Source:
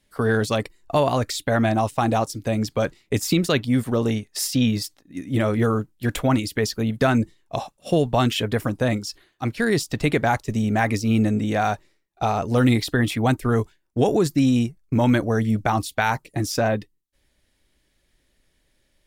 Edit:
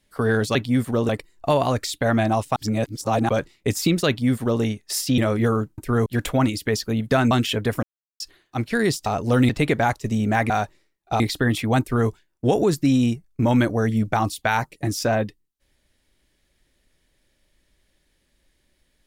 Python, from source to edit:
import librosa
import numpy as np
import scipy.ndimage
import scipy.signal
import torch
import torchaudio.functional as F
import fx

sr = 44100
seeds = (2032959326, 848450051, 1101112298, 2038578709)

y = fx.edit(x, sr, fx.reverse_span(start_s=2.02, length_s=0.73),
    fx.duplicate(start_s=3.54, length_s=0.54, to_s=0.55),
    fx.cut(start_s=4.64, length_s=0.72),
    fx.cut(start_s=7.21, length_s=0.97),
    fx.silence(start_s=8.7, length_s=0.37),
    fx.cut(start_s=10.94, length_s=0.66),
    fx.move(start_s=12.3, length_s=0.43, to_s=9.93),
    fx.duplicate(start_s=13.34, length_s=0.28, to_s=5.96), tone=tone)